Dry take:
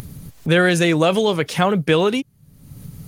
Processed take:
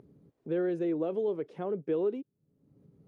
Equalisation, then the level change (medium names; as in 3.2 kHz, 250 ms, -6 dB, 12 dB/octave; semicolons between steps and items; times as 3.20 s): band-pass filter 380 Hz, Q 2.6; -9.0 dB